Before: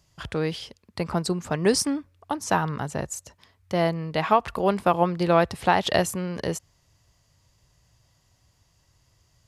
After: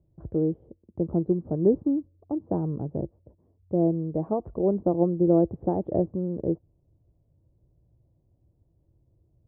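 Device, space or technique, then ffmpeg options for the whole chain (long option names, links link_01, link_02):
under water: -af "lowpass=frequency=550:width=0.5412,lowpass=frequency=550:width=1.3066,equalizer=frequency=330:width_type=o:width=0.22:gain=9"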